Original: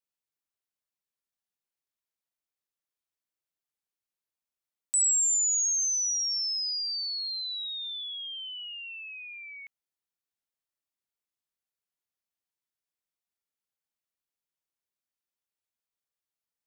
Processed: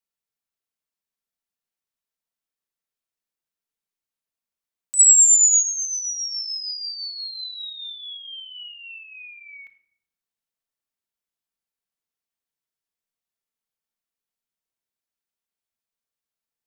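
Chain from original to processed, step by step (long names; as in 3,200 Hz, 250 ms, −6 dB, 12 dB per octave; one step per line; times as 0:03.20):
0:04.99–0:05.63: graphic EQ with 10 bands 2,000 Hz +12 dB, 4,000 Hz −4 dB, 8,000 Hz +12 dB
on a send: convolution reverb RT60 0.75 s, pre-delay 4 ms, DRR 6 dB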